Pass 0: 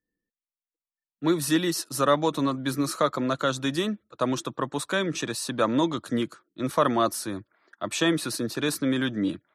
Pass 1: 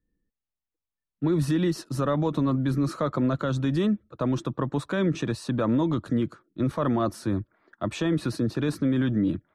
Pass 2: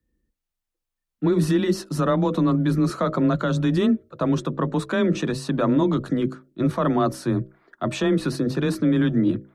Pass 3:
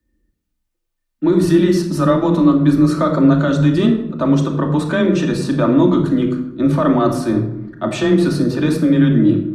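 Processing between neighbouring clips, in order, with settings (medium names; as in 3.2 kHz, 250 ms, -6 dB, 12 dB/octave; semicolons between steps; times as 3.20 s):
RIAA curve playback; peak limiter -16.5 dBFS, peak gain reduction 9 dB
hum notches 60/120/180/240/300/360/420/480/540/600 Hz; frequency shift +19 Hz; trim +4.5 dB
simulated room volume 2300 m³, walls furnished, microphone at 2.6 m; trim +3 dB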